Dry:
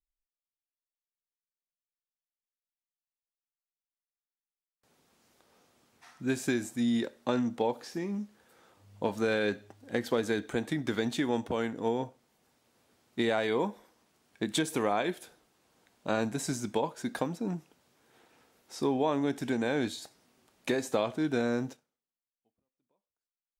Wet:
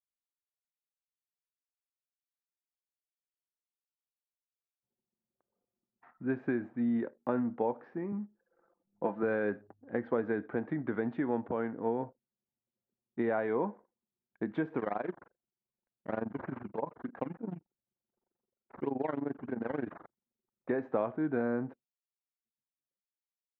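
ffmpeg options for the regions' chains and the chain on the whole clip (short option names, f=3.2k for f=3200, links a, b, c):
-filter_complex "[0:a]asettb=1/sr,asplit=3[a][b][c];[a]atrim=end=8.124[d];[b]atrim=start=8.12:end=9.23,asetpts=PTS-STARTPTS,afade=t=in:d=0.004:c=qsin,afade=t=out:st=1.106:d=0.004:c=qsin,highpass=160,aecho=1:1:5.9:0.46,atrim=end_sample=48951[e];[c]atrim=start=9.226[f];[d][e]acrossfade=d=0.004:c1=hsin:c2=qsin[g];[g][f]acrossfade=d=0.004:c1=qsin:c2=hsin,asettb=1/sr,asplit=3[h][i][j];[h]atrim=end=14.794[k];[i]atrim=start=14.79:end=20.69,asetpts=PTS-STARTPTS,afade=t=in:d=0.004:c=qsin,afade=t=out:st=5.896:d=0.004:c=qsin,tremolo=f=23:d=0.889,acrusher=samples=12:mix=1:aa=0.000001:lfo=1:lforange=12:lforate=3.3[l];[j]atrim=start=20.686[m];[k][l]acrossfade=d=0.004:c1=hsin:c2=qsin[n];[n][m]acrossfade=d=0.004:c1=qsin:c2=hsin,highpass=110,anlmdn=0.000398,lowpass=f=1.7k:w=0.5412,lowpass=f=1.7k:w=1.3066,volume=-2dB"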